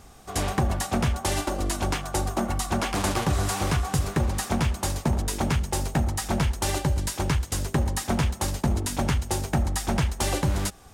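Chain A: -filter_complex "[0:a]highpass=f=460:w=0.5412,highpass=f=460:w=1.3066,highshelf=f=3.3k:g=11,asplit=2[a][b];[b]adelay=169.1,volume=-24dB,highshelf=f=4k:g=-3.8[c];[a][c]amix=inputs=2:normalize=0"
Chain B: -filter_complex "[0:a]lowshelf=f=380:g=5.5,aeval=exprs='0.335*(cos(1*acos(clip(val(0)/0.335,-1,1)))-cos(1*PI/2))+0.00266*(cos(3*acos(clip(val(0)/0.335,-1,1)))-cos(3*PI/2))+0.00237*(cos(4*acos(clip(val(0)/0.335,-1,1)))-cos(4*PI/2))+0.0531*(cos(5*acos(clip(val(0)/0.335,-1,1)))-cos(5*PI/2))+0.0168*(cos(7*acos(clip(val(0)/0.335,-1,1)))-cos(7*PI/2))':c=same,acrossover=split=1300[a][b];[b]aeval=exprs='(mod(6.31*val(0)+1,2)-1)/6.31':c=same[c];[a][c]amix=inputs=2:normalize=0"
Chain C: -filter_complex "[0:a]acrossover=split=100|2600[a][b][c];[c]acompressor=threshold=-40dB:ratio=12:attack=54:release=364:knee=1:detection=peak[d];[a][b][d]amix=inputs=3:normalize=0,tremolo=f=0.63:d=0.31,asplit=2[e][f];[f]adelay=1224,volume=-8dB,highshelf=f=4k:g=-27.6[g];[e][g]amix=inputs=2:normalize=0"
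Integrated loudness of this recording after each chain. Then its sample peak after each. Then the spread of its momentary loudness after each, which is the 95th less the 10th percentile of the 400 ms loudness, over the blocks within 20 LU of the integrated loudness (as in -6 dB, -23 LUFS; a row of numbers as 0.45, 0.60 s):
-24.5, -21.5, -28.0 LUFS; -7.0, -9.0, -11.5 dBFS; 4, 2, 4 LU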